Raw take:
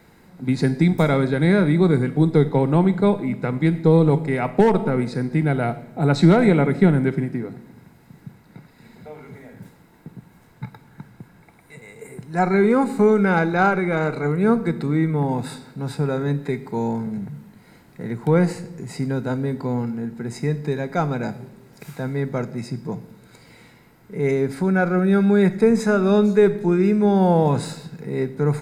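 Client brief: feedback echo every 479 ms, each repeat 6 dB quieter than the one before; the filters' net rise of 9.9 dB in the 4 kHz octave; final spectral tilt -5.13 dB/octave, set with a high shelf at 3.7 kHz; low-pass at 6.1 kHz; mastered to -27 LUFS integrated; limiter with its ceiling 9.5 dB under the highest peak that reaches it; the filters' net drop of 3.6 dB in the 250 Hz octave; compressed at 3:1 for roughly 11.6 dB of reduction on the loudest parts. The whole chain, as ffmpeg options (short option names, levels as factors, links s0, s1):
-af "lowpass=6100,equalizer=f=250:t=o:g=-5.5,highshelf=f=3700:g=6,equalizer=f=4000:t=o:g=8,acompressor=threshold=0.0398:ratio=3,alimiter=limit=0.0668:level=0:latency=1,aecho=1:1:479|958|1437|1916|2395|2874:0.501|0.251|0.125|0.0626|0.0313|0.0157,volume=1.88"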